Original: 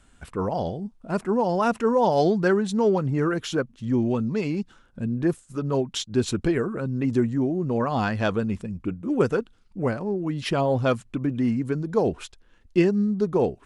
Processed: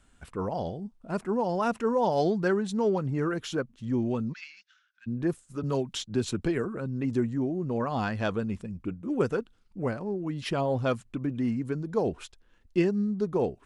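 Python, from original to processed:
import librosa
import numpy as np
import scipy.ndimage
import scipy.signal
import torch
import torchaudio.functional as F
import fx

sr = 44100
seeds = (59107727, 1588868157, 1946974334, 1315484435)

y = fx.ellip_bandpass(x, sr, low_hz=1500.0, high_hz=6100.0, order=3, stop_db=50, at=(4.32, 5.06), fade=0.02)
y = fx.band_squash(y, sr, depth_pct=40, at=(5.63, 6.65))
y = F.gain(torch.from_numpy(y), -5.0).numpy()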